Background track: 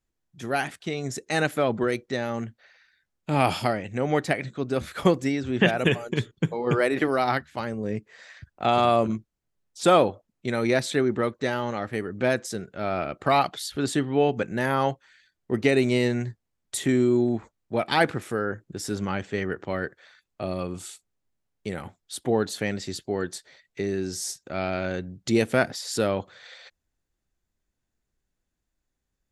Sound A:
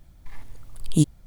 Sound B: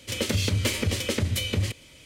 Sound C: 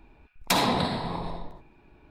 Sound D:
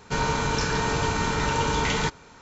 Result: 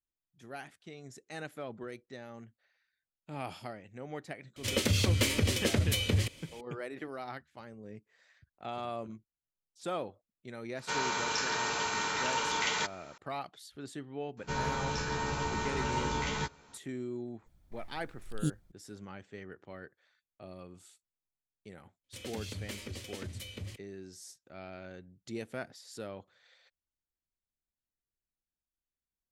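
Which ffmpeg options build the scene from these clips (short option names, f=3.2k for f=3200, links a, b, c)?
-filter_complex "[2:a]asplit=2[a][b];[4:a]asplit=2[c][d];[0:a]volume=-18dB[e];[c]highpass=f=1.1k:p=1[f];[d]asplit=2[g][h];[h]adelay=14,volume=-3dB[i];[g][i]amix=inputs=2:normalize=0[j];[b]agate=range=-24dB:threshold=-37dB:ratio=16:release=100:detection=peak[k];[a]atrim=end=2.05,asetpts=PTS-STARTPTS,volume=-2.5dB,afade=t=in:d=0.004:c=hsin,afade=t=out:st=2.046:d=0.004:c=hsin,adelay=4560[l];[f]atrim=end=2.41,asetpts=PTS-STARTPTS,volume=-3dB,afade=t=in:d=0.004:c=hsin,afade=t=out:st=2.406:d=0.004:c=hsin,adelay=10770[m];[j]atrim=end=2.41,asetpts=PTS-STARTPTS,volume=-11.5dB,afade=t=in:d=0.004:c=hsin,afade=t=out:st=2.406:d=0.004:c=hsin,adelay=14370[n];[1:a]atrim=end=1.26,asetpts=PTS-STARTPTS,volume=-13.5dB,afade=t=in:d=0.004:c=hsin,afade=t=out:st=1.256:d=0.004:c=hsin,adelay=17460[o];[k]atrim=end=2.05,asetpts=PTS-STARTPTS,volume=-16.5dB,afade=t=in:d=0.004:c=hsin,afade=t=out:st=2.046:d=0.004:c=hsin,adelay=22040[p];[e][l][m][n][o][p]amix=inputs=6:normalize=0"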